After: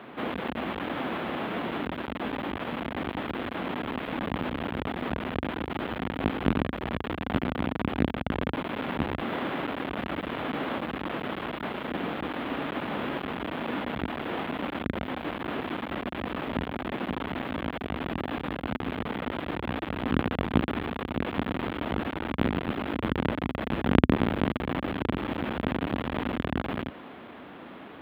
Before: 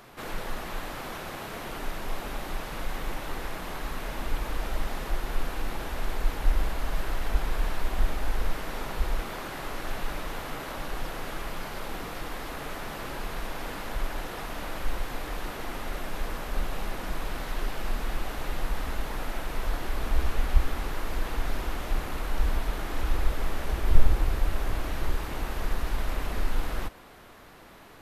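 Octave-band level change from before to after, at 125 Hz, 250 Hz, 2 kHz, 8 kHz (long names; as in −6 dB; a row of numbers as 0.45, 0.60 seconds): +1.5 dB, +12.0 dB, +2.5 dB, below −20 dB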